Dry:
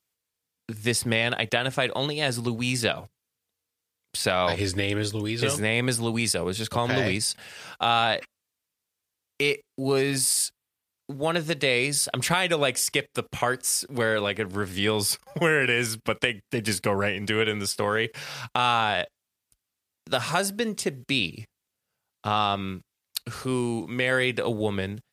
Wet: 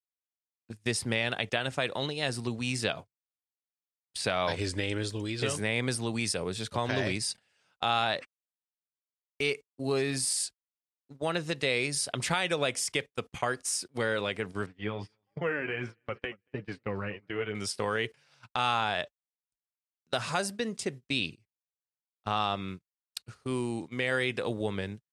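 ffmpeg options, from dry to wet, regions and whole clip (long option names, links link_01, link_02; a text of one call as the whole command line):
ffmpeg -i in.wav -filter_complex "[0:a]asettb=1/sr,asplit=3[link_01][link_02][link_03];[link_01]atrim=end=14.664[link_04];[link_02]atrim=start=14.66:end=17.55,asetpts=PTS-STARTPTS,afade=type=in:duration=0.004:curve=qsin,afade=type=out:start_time=2.886:duration=0.004:curve=qsin,lowpass=2100,flanger=delay=6.3:depth=4.7:regen=22:speed=1.5:shape=sinusoidal,aecho=1:1:234|468|702:0.1|0.044|0.0194,atrim=end_sample=127449[link_05];[link_03]atrim=start=17.546[link_06];[link_04][link_05]acrossfade=duration=0.004:curve1=hsin:curve2=qsin[link_07];[link_07][link_06]acrossfade=duration=0.004:curve1=qsin:curve2=hsin,agate=range=-23dB:threshold=-33dB:ratio=16:detection=peak,lowpass=frequency=9900:width=0.5412,lowpass=frequency=9900:width=1.3066,volume=-5.5dB" out.wav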